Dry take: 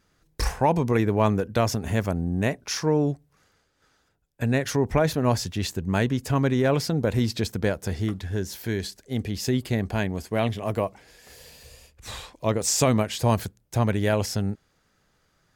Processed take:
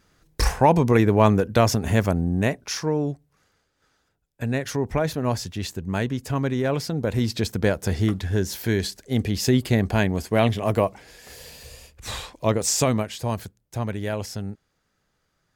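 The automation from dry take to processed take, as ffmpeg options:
-af "volume=11.5dB,afade=t=out:st=2.06:d=0.88:silence=0.473151,afade=t=in:st=6.94:d=1.08:silence=0.446684,afade=t=out:st=12.13:d=1.08:silence=0.316228"

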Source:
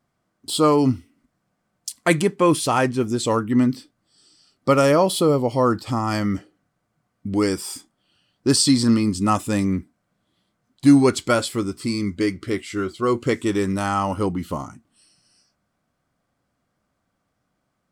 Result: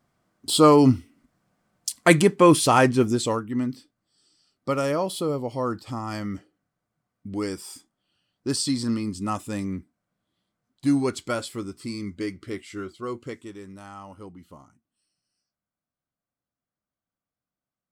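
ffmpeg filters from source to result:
-af "volume=2dB,afade=t=out:st=3.02:d=0.4:silence=0.298538,afade=t=out:st=12.74:d=0.81:silence=0.281838"

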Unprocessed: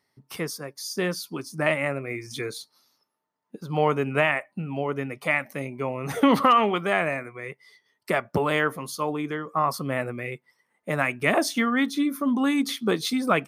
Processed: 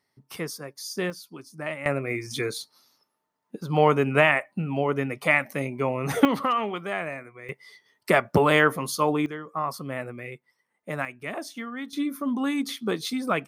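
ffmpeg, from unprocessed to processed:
-af "asetnsamples=n=441:p=0,asendcmd='1.1 volume volume -9dB;1.86 volume volume 3dB;6.25 volume volume -6.5dB;7.49 volume volume 4.5dB;9.26 volume volume -5dB;11.05 volume volume -12dB;11.93 volume volume -3.5dB',volume=-2dB"

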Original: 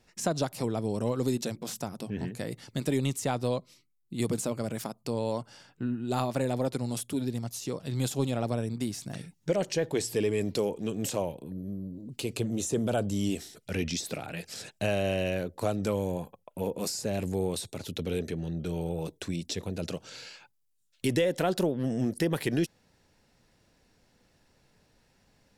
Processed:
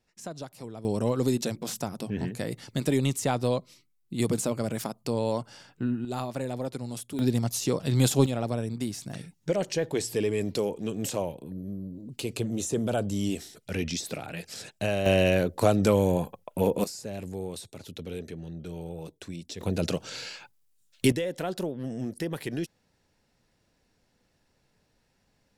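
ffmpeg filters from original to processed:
-af "asetnsamples=n=441:p=0,asendcmd='0.85 volume volume 3dB;6.05 volume volume -3.5dB;7.19 volume volume 7.5dB;8.26 volume volume 0.5dB;15.06 volume volume 7.5dB;16.84 volume volume -5.5dB;19.61 volume volume 6.5dB;21.12 volume volume -4.5dB',volume=-10dB"

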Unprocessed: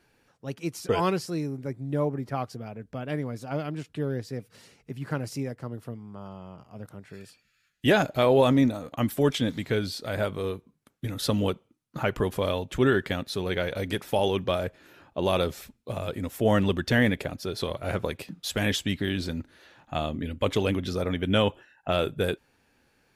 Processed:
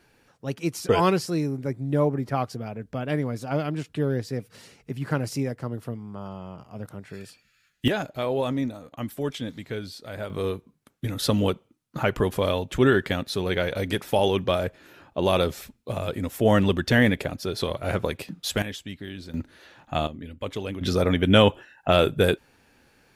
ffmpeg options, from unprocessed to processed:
-af "asetnsamples=n=441:p=0,asendcmd='7.88 volume volume -6dB;10.3 volume volume 3dB;18.62 volume volume -9dB;19.34 volume volume 3.5dB;20.07 volume volume -6.5dB;20.81 volume volume 6.5dB',volume=4.5dB"

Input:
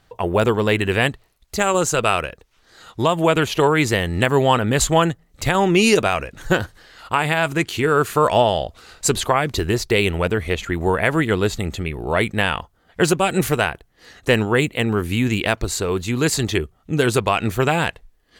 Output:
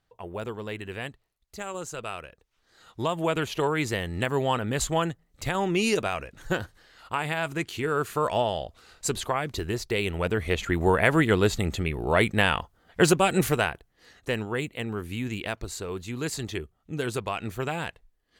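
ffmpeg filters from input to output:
-af "volume=-2.5dB,afade=t=in:st=2.23:d=0.8:silence=0.421697,afade=t=in:st=10.05:d=0.66:silence=0.446684,afade=t=out:st=13.09:d=1.22:silence=0.334965"

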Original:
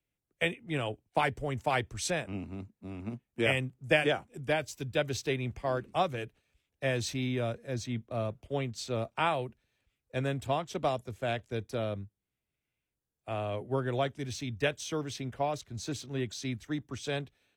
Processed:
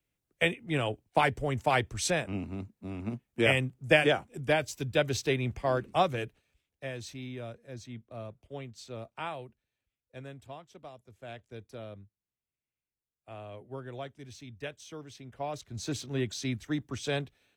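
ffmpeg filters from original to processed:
-af "volume=23.5dB,afade=t=out:st=6.24:d=0.65:silence=0.266073,afade=t=out:st=9.37:d=1.55:silence=0.334965,afade=t=in:st=10.92:d=0.54:silence=0.398107,afade=t=in:st=15.27:d=0.68:silence=0.237137"

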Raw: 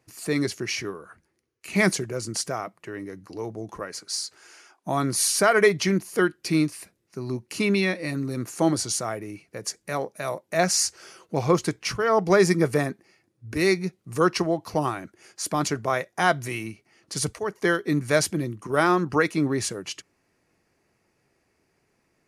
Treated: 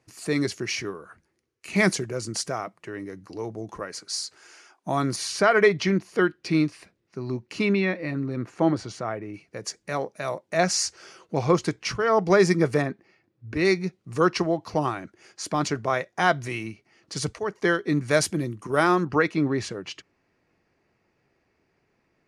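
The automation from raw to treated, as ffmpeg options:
-af "asetnsamples=n=441:p=0,asendcmd='5.16 lowpass f 4500;7.73 lowpass f 2600;9.34 lowpass f 6800;12.82 lowpass f 3700;13.65 lowpass f 6300;18.11 lowpass f 11000;19.05 lowpass f 4200',lowpass=9k"

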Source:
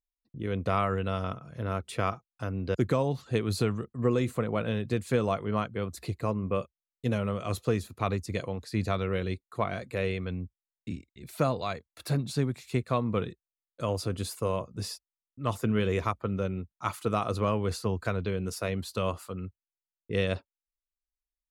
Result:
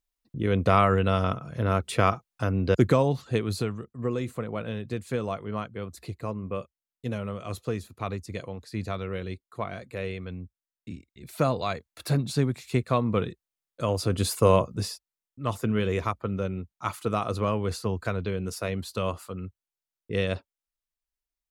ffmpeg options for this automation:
-af "volume=21dB,afade=t=out:st=2.69:d=1.03:silence=0.316228,afade=t=in:st=10.91:d=0.7:silence=0.473151,afade=t=in:st=13.97:d=0.58:silence=0.421697,afade=t=out:st=14.55:d=0.37:silence=0.316228"

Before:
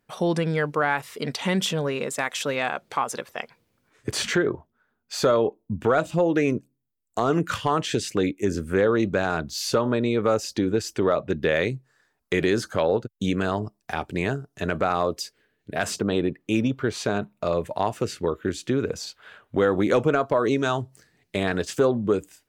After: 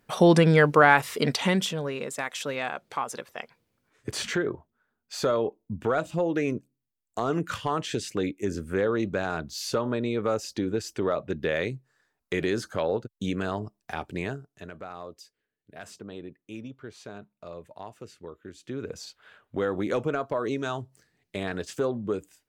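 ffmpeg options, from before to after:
-af "volume=16dB,afade=t=out:st=1.12:d=0.58:silence=0.281838,afade=t=out:st=14.14:d=0.57:silence=0.251189,afade=t=in:st=18.55:d=0.44:silence=0.316228"

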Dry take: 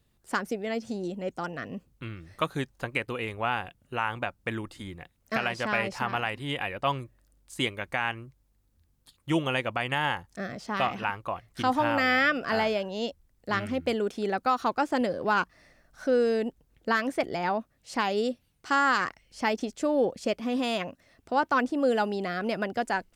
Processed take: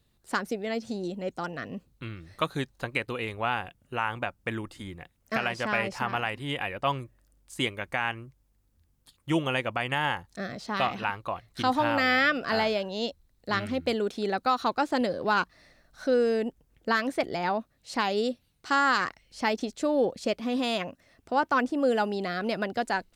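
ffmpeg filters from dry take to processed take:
-af "asetnsamples=n=441:p=0,asendcmd='3.54 equalizer g -1.5;10.25 equalizer g 9;16.14 equalizer g -2;16.89 equalizer g 6.5;20.78 equalizer g 0;22.16 equalizer g 8',equalizer=f=4k:t=o:w=0.28:g=6"

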